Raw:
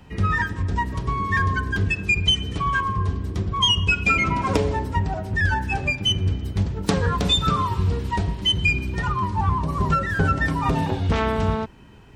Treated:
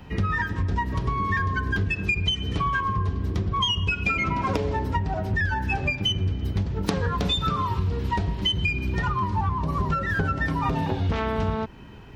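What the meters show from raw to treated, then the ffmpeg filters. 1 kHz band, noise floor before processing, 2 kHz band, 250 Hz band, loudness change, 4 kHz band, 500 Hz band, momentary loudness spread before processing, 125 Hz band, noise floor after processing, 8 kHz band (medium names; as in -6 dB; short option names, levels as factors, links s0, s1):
-2.5 dB, -36 dBFS, -3.5 dB, -2.5 dB, -3.0 dB, -5.0 dB, -3.0 dB, 7 LU, -2.5 dB, -35 dBFS, -8.5 dB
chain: -af "equalizer=f=8500:w=1.6:g=-10,acompressor=threshold=0.0562:ratio=6,volume=1.5"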